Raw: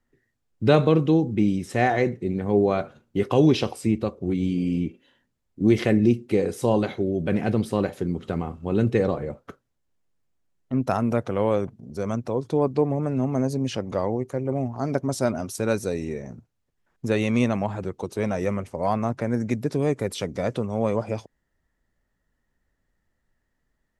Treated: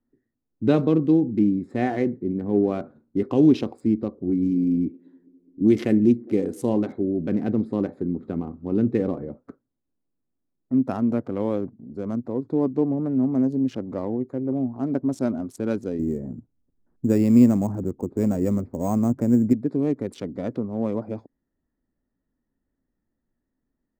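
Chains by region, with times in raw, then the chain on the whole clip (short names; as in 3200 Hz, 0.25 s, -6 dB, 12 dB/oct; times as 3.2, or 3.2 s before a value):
4.45–6.74 high shelf 5100 Hz +9.5 dB + band-limited delay 0.206 s, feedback 76%, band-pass 640 Hz, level -23.5 dB
15.99–19.53 tilt -2.5 dB/oct + careless resampling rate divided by 6×, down filtered, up hold
whole clip: Wiener smoothing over 15 samples; bell 270 Hz +13 dB 1 oct; gain -7.5 dB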